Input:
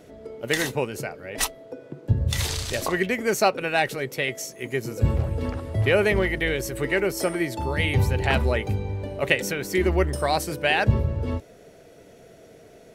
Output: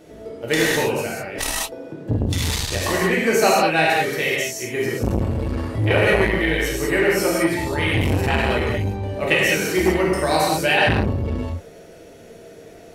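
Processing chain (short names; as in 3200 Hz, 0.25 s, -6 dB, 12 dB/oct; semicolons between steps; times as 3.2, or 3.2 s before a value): non-linear reverb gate 0.23 s flat, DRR -5.5 dB; core saturation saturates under 570 Hz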